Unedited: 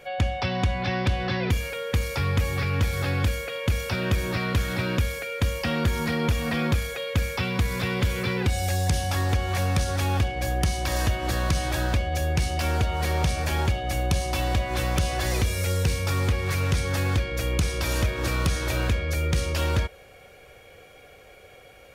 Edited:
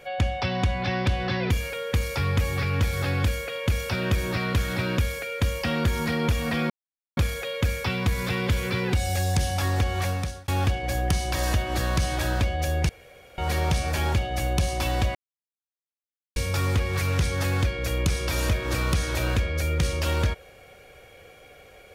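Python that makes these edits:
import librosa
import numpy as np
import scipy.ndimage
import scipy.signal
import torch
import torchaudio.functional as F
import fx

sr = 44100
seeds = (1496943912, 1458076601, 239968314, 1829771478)

y = fx.edit(x, sr, fx.insert_silence(at_s=6.7, length_s=0.47),
    fx.fade_out_span(start_s=9.53, length_s=0.48),
    fx.room_tone_fill(start_s=12.42, length_s=0.49),
    fx.silence(start_s=14.68, length_s=1.21), tone=tone)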